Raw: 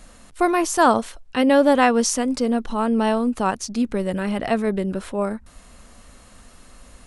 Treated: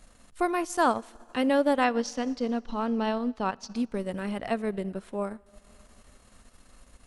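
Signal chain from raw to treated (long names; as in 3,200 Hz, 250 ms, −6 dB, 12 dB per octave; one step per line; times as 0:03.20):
0:01.84–0:03.76: high shelf with overshoot 6,700 Hz −12.5 dB, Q 1.5
four-comb reverb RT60 2.3 s, DRR 18.5 dB
transient designer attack +1 dB, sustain −8 dB
level −8 dB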